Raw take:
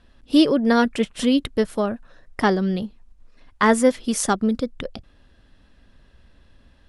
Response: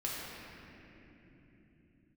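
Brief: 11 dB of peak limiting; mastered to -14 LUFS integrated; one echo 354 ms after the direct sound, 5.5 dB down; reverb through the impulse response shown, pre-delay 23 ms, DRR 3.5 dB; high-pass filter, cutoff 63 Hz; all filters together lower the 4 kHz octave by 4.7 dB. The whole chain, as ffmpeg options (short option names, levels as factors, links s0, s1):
-filter_complex "[0:a]highpass=63,equalizer=f=4000:t=o:g=-6.5,alimiter=limit=0.15:level=0:latency=1,aecho=1:1:354:0.531,asplit=2[s0][s1];[1:a]atrim=start_sample=2205,adelay=23[s2];[s1][s2]afir=irnorm=-1:irlink=0,volume=0.422[s3];[s0][s3]amix=inputs=2:normalize=0,volume=3.16"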